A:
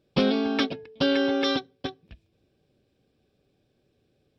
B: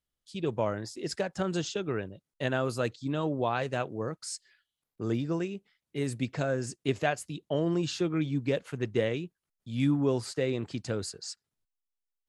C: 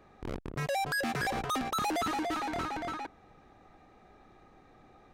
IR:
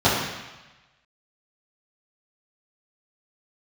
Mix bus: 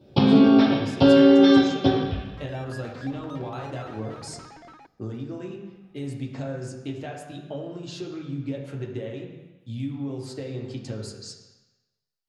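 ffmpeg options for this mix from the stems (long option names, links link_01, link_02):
-filter_complex "[0:a]alimiter=limit=-16.5dB:level=0:latency=1:release=401,acompressor=threshold=-34dB:ratio=6,volume=-0.5dB,asplit=2[link_01][link_02];[link_02]volume=-4.5dB[link_03];[1:a]bandreject=frequency=48.66:width_type=h:width=4,bandreject=frequency=97.32:width_type=h:width=4,bandreject=frequency=145.98:width_type=h:width=4,bandreject=frequency=194.64:width_type=h:width=4,bandreject=frequency=243.3:width_type=h:width=4,bandreject=frequency=291.96:width_type=h:width=4,bandreject=frequency=340.62:width_type=h:width=4,bandreject=frequency=389.28:width_type=h:width=4,bandreject=frequency=437.94:width_type=h:width=4,bandreject=frequency=486.6:width_type=h:width=4,bandreject=frequency=535.26:width_type=h:width=4,bandreject=frequency=583.92:width_type=h:width=4,bandreject=frequency=632.58:width_type=h:width=4,bandreject=frequency=681.24:width_type=h:width=4,bandreject=frequency=729.9:width_type=h:width=4,bandreject=frequency=778.56:width_type=h:width=4,bandreject=frequency=827.22:width_type=h:width=4,bandreject=frequency=875.88:width_type=h:width=4,bandreject=frequency=924.54:width_type=h:width=4,bandreject=frequency=973.2:width_type=h:width=4,bandreject=frequency=1021.86:width_type=h:width=4,bandreject=frequency=1070.52:width_type=h:width=4,bandreject=frequency=1119.18:width_type=h:width=4,bandreject=frequency=1167.84:width_type=h:width=4,bandreject=frequency=1216.5:width_type=h:width=4,bandreject=frequency=1265.16:width_type=h:width=4,bandreject=frequency=1313.82:width_type=h:width=4,bandreject=frequency=1362.48:width_type=h:width=4,bandreject=frequency=1411.14:width_type=h:width=4,bandreject=frequency=1459.8:width_type=h:width=4,acompressor=threshold=-34dB:ratio=12,volume=-2dB,asplit=2[link_04][link_05];[link_05]volume=-19.5dB[link_06];[2:a]acrossover=split=6100[link_07][link_08];[link_08]acompressor=threshold=-59dB:ratio=4:attack=1:release=60[link_09];[link_07][link_09]amix=inputs=2:normalize=0,highshelf=frequency=4300:gain=-7,adelay=1800,volume=-10.5dB[link_10];[3:a]atrim=start_sample=2205[link_11];[link_03][link_06]amix=inputs=2:normalize=0[link_12];[link_12][link_11]afir=irnorm=-1:irlink=0[link_13];[link_01][link_04][link_10][link_13]amix=inputs=4:normalize=0"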